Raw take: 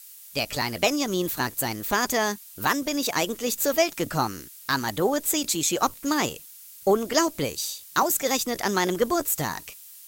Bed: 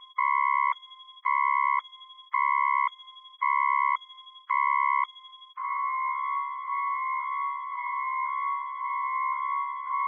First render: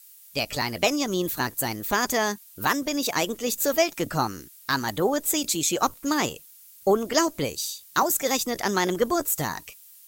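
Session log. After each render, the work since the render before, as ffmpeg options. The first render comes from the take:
-af "afftdn=nr=6:nf=-46"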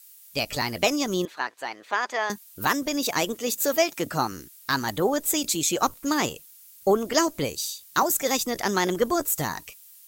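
-filter_complex "[0:a]asettb=1/sr,asplit=3[a][b][c];[a]atrim=end=1.254[d];[b]atrim=start=1.25:end=2.3,asetpts=PTS-STARTPTS,afade=t=in:d=0.004:c=qsin,afade=t=out:st=1.046:d=0.004:c=qsin,highpass=630,lowpass=3k[e];[c]atrim=start=2.296[f];[d][e]acrossfade=d=0.004:c1=hsin:c2=qsin[g];[g][f]acrossfade=d=0.004:c1=qsin:c2=hsin,asettb=1/sr,asplit=3[h][i][j];[h]atrim=end=3.334[k];[i]atrim=start=3.33:end=4.32,asetpts=PTS-STARTPTS,afade=t=in:d=0.004:c=qsin,afade=t=out:st=0.986:d=0.004:c=qsin,highpass=f=140:p=1[l];[j]atrim=start=4.316[m];[k][l]acrossfade=d=0.004:c1=hsin:c2=qsin[n];[n][m]acrossfade=d=0.004:c1=qsin:c2=hsin"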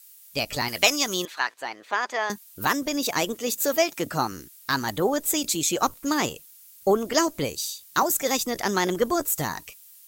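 -filter_complex "[0:a]asettb=1/sr,asplit=3[a][b][c];[a]atrim=end=0.684[d];[b]atrim=start=0.68:end=1.54,asetpts=PTS-STARTPTS,afade=t=in:d=0.004:c=qsin,afade=t=out:st=0.856:d=0.004:c=qsin,tiltshelf=f=750:g=-7[e];[c]atrim=start=1.536[f];[d][e]acrossfade=d=0.004:c1=hsin:c2=qsin[g];[g][f]acrossfade=d=0.004:c1=qsin:c2=hsin"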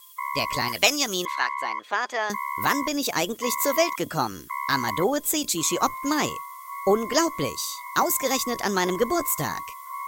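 -filter_complex "[1:a]volume=-6dB[a];[0:a][a]amix=inputs=2:normalize=0"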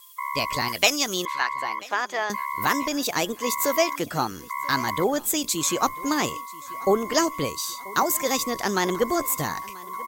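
-af "aecho=1:1:986|1972|2958:0.0794|0.0397|0.0199"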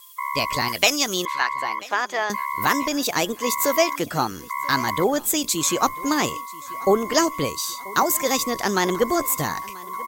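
-af "volume=2.5dB,alimiter=limit=-1dB:level=0:latency=1"

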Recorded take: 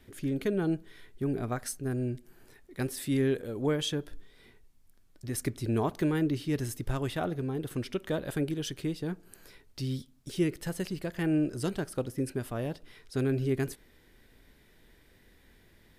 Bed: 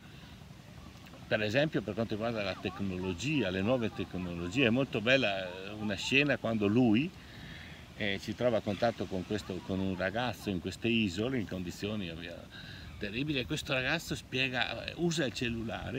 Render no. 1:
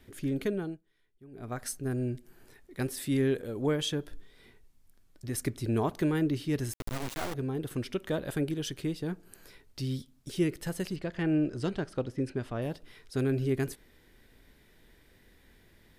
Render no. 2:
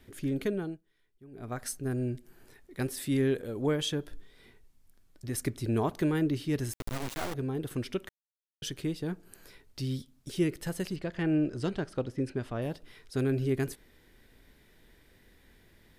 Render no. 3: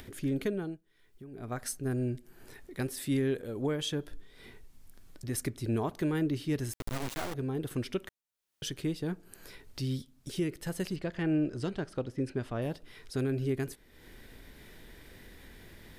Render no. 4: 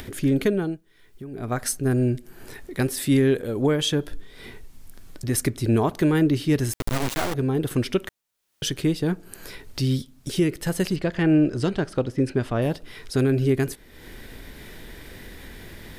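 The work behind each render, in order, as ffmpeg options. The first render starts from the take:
-filter_complex "[0:a]asettb=1/sr,asplit=3[a][b][c];[a]atrim=end=6.734[d];[b]atrim=start=6.73:end=7.34,asetpts=PTS-STARTPTS,afade=t=in:d=0.004:c=qsin,afade=t=out:st=0.606:d=0.004:c=qsin,acrusher=bits=3:dc=4:mix=0:aa=0.000001[e];[c]atrim=start=7.336[f];[d][e]acrossfade=d=0.004:c1=hsin:c2=qsin[g];[g][f]acrossfade=d=0.004:c1=qsin:c2=hsin,asettb=1/sr,asplit=3[h][i][j];[h]atrim=end=10.964[k];[i]atrim=start=10.96:end=12.62,asetpts=PTS-STARTPTS,afade=t=in:d=0.004:c=qsin,afade=t=out:st=1.656:d=0.004:c=qsin,lowpass=5k[l];[j]atrim=start=12.616[m];[k][l]acrossfade=d=0.004:c1=hsin:c2=qsin[n];[n][m]acrossfade=d=0.004:c1=qsin:c2=hsin,asplit=3[o][p][q];[o]atrim=end=0.8,asetpts=PTS-STARTPTS,afade=t=out:st=0.44:d=0.36:silence=0.0841395[r];[p]atrim=start=0.8:end=1.31,asetpts=PTS-STARTPTS,volume=-21.5dB[s];[q]atrim=start=1.31,asetpts=PTS-STARTPTS,afade=t=in:d=0.36:silence=0.0841395[t];[r][s][t]concat=n=3:v=0:a=1"
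-filter_complex "[0:a]asplit=3[a][b][c];[a]atrim=end=8.09,asetpts=PTS-STARTPTS,afade=t=out:st=8.086:d=0.004:c=hsin[d];[b]atrim=start=8.09:end=8.62,asetpts=PTS-STARTPTS,volume=0[e];[c]atrim=start=8.62,asetpts=PTS-STARTPTS,afade=t=in:d=0.004:c=hsin[f];[d][e][f]concat=n=3:v=0:a=1"
-af "alimiter=limit=-21.5dB:level=0:latency=1:release=424,acompressor=mode=upward:threshold=-41dB:ratio=2.5"
-af "volume=10.5dB"

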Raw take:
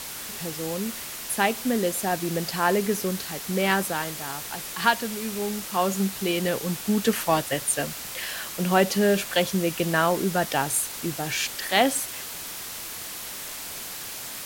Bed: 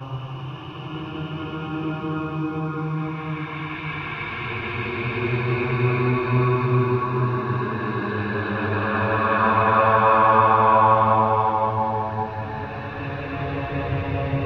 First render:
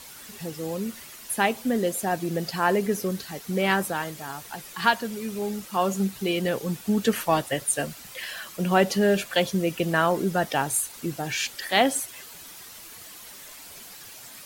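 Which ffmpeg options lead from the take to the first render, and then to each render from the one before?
-af "afftdn=nr=10:nf=-36"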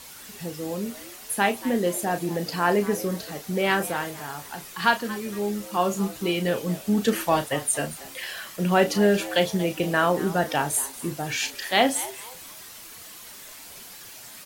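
-filter_complex "[0:a]asplit=2[a][b];[b]adelay=34,volume=-9dB[c];[a][c]amix=inputs=2:normalize=0,asplit=4[d][e][f][g];[e]adelay=232,afreqshift=120,volume=-17dB[h];[f]adelay=464,afreqshift=240,volume=-26.1dB[i];[g]adelay=696,afreqshift=360,volume=-35.2dB[j];[d][h][i][j]amix=inputs=4:normalize=0"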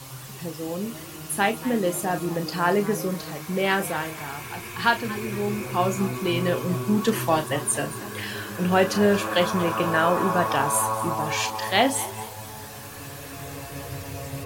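-filter_complex "[1:a]volume=-10.5dB[a];[0:a][a]amix=inputs=2:normalize=0"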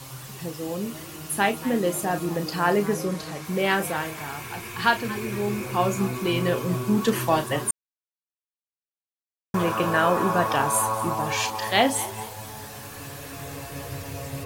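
-filter_complex "[0:a]asettb=1/sr,asplit=3[a][b][c];[a]atrim=end=2.944[d];[b]atrim=start=2.94:end=3.45,asetpts=PTS-STARTPTS,afade=t=in:d=0.004:c=qsin,afade=t=out:st=0.506:d=0.004:c=qsin,lowpass=11k[e];[c]atrim=start=3.446[f];[d][e]acrossfade=d=0.004:c1=hsin:c2=qsin[g];[g][f]acrossfade=d=0.004:c1=qsin:c2=hsin,asplit=3[h][i][j];[h]atrim=end=7.71,asetpts=PTS-STARTPTS,afade=t=out:st=7.706:d=0.004:c=hsin[k];[i]atrim=start=7.71:end=9.54,asetpts=PTS-STARTPTS,volume=0[l];[j]atrim=start=9.54,asetpts=PTS-STARTPTS,afade=t=in:d=0.004:c=hsin[m];[k][l][m]concat=n=3:v=0:a=1"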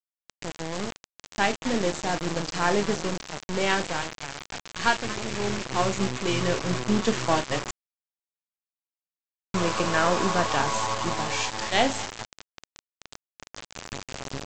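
-af "aeval=exprs='if(lt(val(0),0),0.447*val(0),val(0))':c=same,aresample=16000,acrusher=bits=4:mix=0:aa=0.000001,aresample=44100"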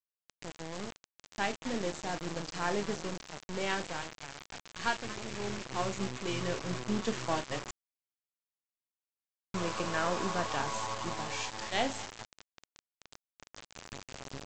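-af "volume=-9dB"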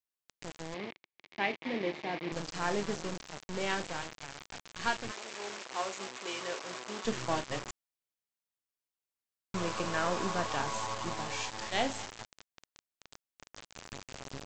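-filter_complex "[0:a]asettb=1/sr,asplit=3[a][b][c];[a]atrim=end=0.744[d];[b]atrim=start=0.74:end=2.32,asetpts=PTS-STARTPTS,afade=t=in:d=0.004:c=qsin,afade=t=out:st=1.576:d=0.004:c=qsin,highpass=170,equalizer=f=360:t=q:w=4:g=4,equalizer=f=1.4k:t=q:w=4:g=-7,equalizer=f=2.2k:t=q:w=4:g=9,lowpass=f=4.1k:w=0.5412,lowpass=f=4.1k:w=1.3066[e];[c]atrim=start=2.316[f];[d][e]acrossfade=d=0.004:c1=hsin:c2=qsin[g];[g][f]acrossfade=d=0.004:c1=qsin:c2=hsin,asettb=1/sr,asplit=3[h][i][j];[h]atrim=end=5.114[k];[i]atrim=start=5.11:end=7.05,asetpts=PTS-STARTPTS,afade=t=in:d=0.004:c=qsin,afade=t=out:st=1.936:d=0.004:c=qsin,highpass=480[l];[j]atrim=start=7.046[m];[k][l]acrossfade=d=0.004:c1=hsin:c2=qsin[n];[n][m]acrossfade=d=0.004:c1=qsin:c2=hsin"

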